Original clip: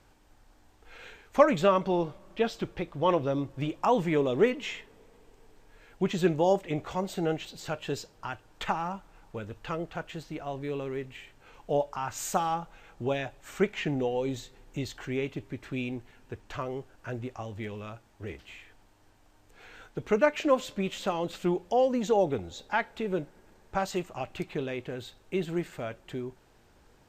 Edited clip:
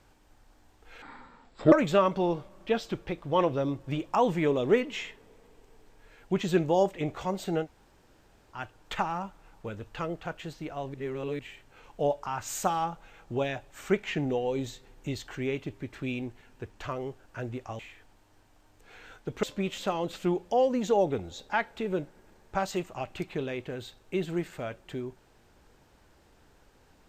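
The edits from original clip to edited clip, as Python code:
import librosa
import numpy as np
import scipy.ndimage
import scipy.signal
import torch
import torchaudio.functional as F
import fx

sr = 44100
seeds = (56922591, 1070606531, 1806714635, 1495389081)

y = fx.edit(x, sr, fx.speed_span(start_s=1.02, length_s=0.4, speed=0.57),
    fx.room_tone_fill(start_s=7.33, length_s=0.93, crossfade_s=0.1),
    fx.reverse_span(start_s=10.64, length_s=0.45),
    fx.cut(start_s=17.49, length_s=1.0),
    fx.cut(start_s=20.13, length_s=0.5), tone=tone)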